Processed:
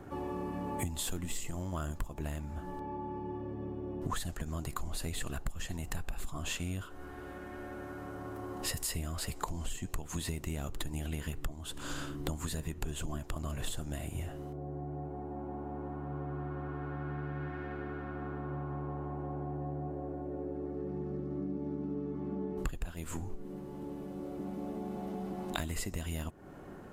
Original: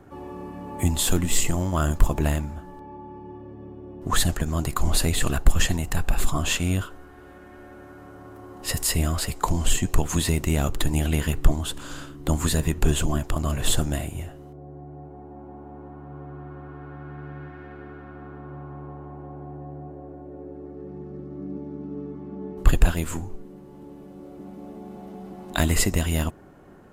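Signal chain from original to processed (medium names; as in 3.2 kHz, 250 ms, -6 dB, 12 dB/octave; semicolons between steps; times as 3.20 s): compression 10:1, threshold -34 dBFS, peak gain reduction 25.5 dB; trim +1 dB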